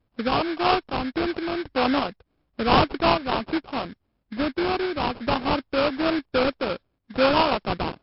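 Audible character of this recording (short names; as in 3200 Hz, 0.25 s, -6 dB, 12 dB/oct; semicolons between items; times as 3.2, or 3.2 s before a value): aliases and images of a low sample rate 1900 Hz, jitter 20%; random-step tremolo; MP3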